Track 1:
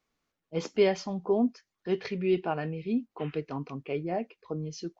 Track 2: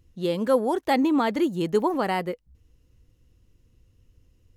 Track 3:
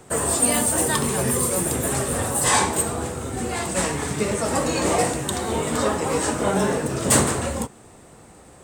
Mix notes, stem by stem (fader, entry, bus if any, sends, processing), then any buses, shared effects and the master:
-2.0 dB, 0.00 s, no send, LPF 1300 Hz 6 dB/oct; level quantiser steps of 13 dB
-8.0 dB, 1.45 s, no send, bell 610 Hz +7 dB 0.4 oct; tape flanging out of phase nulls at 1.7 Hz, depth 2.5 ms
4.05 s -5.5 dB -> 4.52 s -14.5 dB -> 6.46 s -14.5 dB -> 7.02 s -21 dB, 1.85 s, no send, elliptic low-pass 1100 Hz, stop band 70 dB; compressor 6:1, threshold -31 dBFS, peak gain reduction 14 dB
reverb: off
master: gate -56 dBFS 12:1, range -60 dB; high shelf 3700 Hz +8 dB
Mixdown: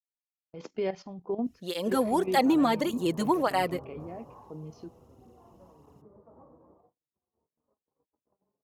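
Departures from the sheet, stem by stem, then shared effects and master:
stem 2 -8.0 dB -> -0.5 dB; stem 3 -5.5 dB -> -12.5 dB

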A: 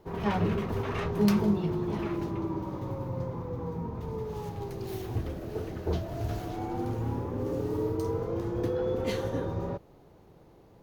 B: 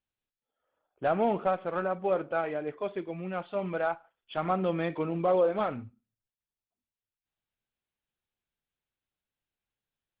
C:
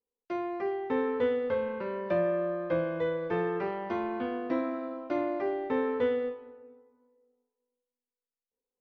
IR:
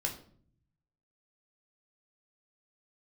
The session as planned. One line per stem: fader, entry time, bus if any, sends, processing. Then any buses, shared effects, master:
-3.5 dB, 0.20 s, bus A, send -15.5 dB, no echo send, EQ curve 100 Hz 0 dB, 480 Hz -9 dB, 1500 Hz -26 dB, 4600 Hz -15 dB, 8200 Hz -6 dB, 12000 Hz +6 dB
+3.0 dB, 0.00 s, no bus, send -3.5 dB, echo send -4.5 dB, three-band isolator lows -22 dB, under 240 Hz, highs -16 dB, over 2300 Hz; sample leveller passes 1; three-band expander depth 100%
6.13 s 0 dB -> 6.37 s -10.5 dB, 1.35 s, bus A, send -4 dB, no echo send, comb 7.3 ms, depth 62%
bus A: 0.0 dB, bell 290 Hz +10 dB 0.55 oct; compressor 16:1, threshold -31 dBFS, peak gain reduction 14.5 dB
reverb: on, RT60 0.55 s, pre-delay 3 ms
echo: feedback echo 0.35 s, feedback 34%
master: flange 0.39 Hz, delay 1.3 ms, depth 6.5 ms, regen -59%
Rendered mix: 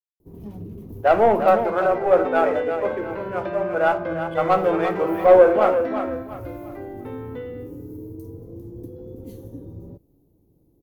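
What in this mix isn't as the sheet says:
stem A: send off; stem C: missing comb 7.3 ms, depth 62%; master: missing flange 0.39 Hz, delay 1.3 ms, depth 6.5 ms, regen -59%

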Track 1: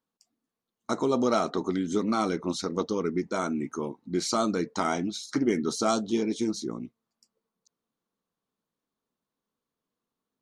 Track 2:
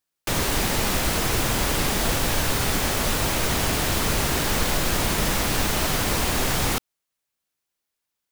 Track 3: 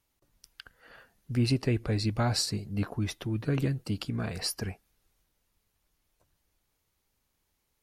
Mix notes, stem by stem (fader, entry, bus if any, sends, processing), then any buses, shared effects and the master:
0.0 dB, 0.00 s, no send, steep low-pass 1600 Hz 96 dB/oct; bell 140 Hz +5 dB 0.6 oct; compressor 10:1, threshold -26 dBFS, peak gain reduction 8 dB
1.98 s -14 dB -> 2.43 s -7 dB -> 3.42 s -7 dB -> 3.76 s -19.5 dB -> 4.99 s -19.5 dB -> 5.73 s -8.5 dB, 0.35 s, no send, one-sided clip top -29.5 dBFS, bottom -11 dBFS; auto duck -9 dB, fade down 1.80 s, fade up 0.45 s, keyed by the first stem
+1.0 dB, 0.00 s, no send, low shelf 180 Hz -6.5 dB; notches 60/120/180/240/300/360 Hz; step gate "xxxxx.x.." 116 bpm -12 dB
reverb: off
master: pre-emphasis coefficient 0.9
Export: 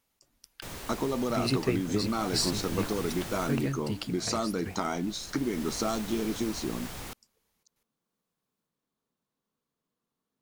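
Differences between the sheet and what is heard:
stem 1: missing steep low-pass 1600 Hz 96 dB/oct; stem 2: missing one-sided clip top -29.5 dBFS, bottom -11 dBFS; master: missing pre-emphasis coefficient 0.9

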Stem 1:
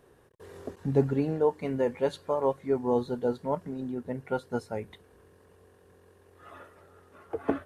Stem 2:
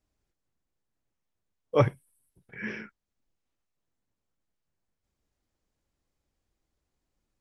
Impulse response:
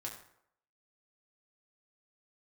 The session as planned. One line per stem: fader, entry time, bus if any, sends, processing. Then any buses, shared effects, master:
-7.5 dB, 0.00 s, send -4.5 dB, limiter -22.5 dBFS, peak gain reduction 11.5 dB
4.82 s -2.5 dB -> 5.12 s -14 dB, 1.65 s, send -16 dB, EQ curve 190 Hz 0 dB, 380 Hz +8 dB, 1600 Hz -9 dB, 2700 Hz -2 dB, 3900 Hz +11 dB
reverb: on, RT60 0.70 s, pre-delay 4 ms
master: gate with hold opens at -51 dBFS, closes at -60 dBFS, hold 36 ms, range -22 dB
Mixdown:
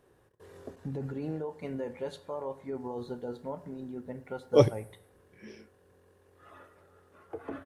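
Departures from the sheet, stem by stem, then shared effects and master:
stem 2: entry 1.65 s -> 2.80 s; master: missing gate with hold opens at -51 dBFS, closes at -60 dBFS, hold 36 ms, range -22 dB

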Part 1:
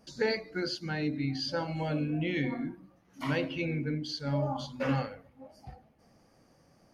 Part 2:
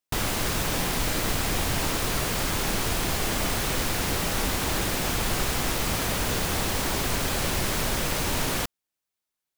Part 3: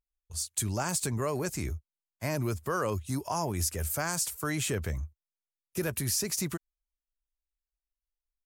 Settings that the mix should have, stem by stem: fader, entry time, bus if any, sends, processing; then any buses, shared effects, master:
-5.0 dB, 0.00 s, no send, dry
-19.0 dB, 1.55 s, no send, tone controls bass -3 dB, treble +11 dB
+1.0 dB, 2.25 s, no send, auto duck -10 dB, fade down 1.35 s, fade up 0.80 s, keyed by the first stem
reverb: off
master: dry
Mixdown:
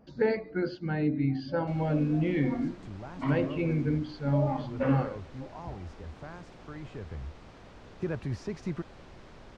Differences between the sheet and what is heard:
stem 1 -5.0 dB -> +5.5 dB; master: extra tape spacing loss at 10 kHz 42 dB

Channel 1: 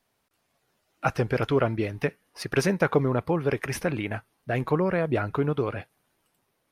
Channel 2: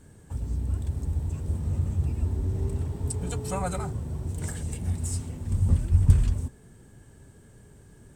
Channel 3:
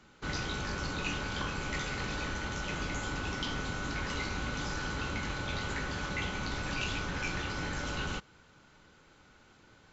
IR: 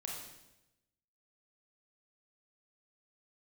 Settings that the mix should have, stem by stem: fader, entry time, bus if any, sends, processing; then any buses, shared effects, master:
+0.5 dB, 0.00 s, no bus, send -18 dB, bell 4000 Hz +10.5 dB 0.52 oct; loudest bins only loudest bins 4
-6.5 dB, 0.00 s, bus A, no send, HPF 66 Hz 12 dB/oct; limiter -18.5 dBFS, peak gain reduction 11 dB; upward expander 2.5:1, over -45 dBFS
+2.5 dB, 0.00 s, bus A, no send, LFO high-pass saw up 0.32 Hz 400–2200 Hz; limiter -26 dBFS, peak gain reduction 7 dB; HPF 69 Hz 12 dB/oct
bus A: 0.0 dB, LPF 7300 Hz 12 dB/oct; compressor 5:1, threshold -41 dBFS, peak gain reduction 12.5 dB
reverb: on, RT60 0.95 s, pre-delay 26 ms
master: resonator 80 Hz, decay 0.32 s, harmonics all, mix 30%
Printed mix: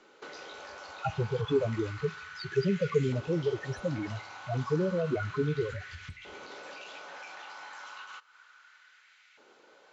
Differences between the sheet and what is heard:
stem 1: send -18 dB -> -24 dB; stem 2: missing limiter -18.5 dBFS, peak gain reduction 11 dB

